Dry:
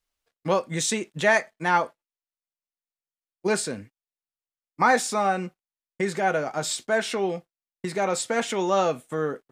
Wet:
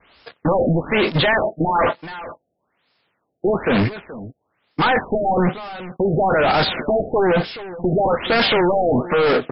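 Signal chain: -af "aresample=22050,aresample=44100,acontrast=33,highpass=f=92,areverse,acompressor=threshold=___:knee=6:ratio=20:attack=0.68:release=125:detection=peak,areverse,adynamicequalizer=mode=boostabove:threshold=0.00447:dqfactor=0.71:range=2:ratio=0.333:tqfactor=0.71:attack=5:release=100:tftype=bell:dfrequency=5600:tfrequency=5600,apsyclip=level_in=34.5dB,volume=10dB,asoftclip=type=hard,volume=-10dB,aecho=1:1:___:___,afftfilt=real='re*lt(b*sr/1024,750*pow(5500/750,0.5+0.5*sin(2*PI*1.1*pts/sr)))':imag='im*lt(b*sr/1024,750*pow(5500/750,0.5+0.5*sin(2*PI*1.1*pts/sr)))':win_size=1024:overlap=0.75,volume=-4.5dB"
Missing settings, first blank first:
-26dB, 426, 0.158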